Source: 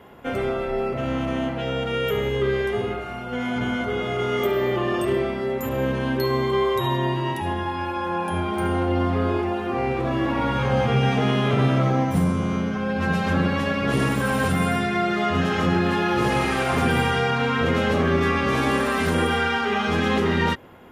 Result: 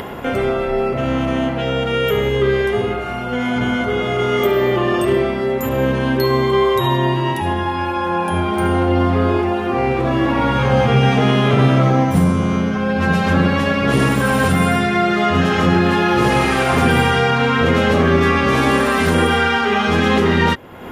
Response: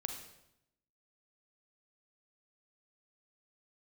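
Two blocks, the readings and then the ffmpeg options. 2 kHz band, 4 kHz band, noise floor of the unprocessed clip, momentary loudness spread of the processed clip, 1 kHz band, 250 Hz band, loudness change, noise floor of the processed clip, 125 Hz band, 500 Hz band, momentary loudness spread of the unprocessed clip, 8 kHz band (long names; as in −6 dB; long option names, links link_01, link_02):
+6.5 dB, +6.5 dB, −29 dBFS, 5 LU, +6.5 dB, +6.5 dB, +6.5 dB, −22 dBFS, +6.5 dB, +6.5 dB, 6 LU, +6.5 dB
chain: -af "acompressor=mode=upward:threshold=-25dB:ratio=2.5,volume=6.5dB"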